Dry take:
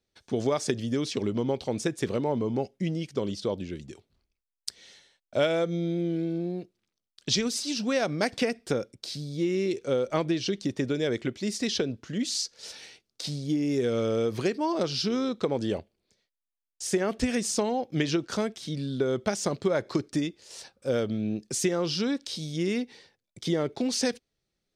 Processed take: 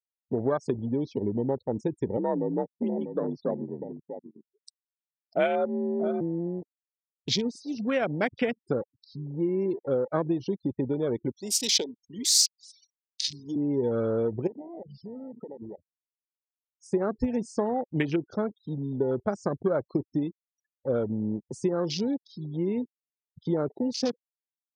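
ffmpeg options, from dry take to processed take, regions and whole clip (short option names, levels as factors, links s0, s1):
-filter_complex "[0:a]asettb=1/sr,asplit=3[s0][s1][s2];[s0]atrim=end=2.174[s3];[s1]atrim=start=2.17:end=6.21,asetpts=PTS-STARTPTS,afade=t=in:d=0.004:c=qsin,afade=t=out:st=4.036:d=0.004:c=qsin,afreqshift=51,aecho=1:1:645:0.355,atrim=end_sample=178164[s4];[s2]atrim=start=6.206[s5];[s3][s4]acrossfade=d=0.004:c1=hsin:c2=qsin[s6];[s6][s5]acrossfade=d=0.004:c1=qsin:c2=hsin,asettb=1/sr,asplit=3[s7][s8][s9];[s7]atrim=end=11.314[s10];[s8]atrim=start=11.31:end=13.56,asetpts=PTS-STARTPTS,afade=t=in:d=0.004:c=qsin,afade=t=out:st=2.246:d=0.004:c=qsin,highpass=120,aemphasis=mode=production:type=riaa[s11];[s9]atrim=start=13.556[s12];[s10][s11]acrossfade=d=0.004:c1=hsin:c2=qsin[s13];[s13][s12]acrossfade=d=0.004:c1=qsin:c2=hsin,asettb=1/sr,asplit=3[s14][s15][s16];[s14]atrim=end=14.474[s17];[s15]atrim=start=14.47:end=16.83,asetpts=PTS-STARTPTS,afade=t=in:d=0.004:c=qsin,afade=t=out:st=2.356:d=0.004:c=qsin,bass=f=250:g=-2,treble=f=4000:g=-3,bandreject=f=60:t=h:w=6,bandreject=f=120:t=h:w=6,bandreject=f=180:t=h:w=6,bandreject=f=240:t=h:w=6,bandreject=f=300:t=h:w=6,bandreject=f=360:t=h:w=6,acompressor=threshold=0.0178:ratio=10:attack=3.2:release=140:knee=1:detection=peak[s18];[s16]atrim=start=16.826[s19];[s17][s18]acrossfade=d=0.004:c1=hsin:c2=qsin[s20];[s20][s19]acrossfade=d=0.004:c1=qsin:c2=hsin,afftfilt=real='re*gte(hypot(re,im),0.0282)':imag='im*gte(hypot(re,im),0.0282)':win_size=1024:overlap=0.75,afwtdn=0.0224,equalizer=f=2300:w=1.5:g=2"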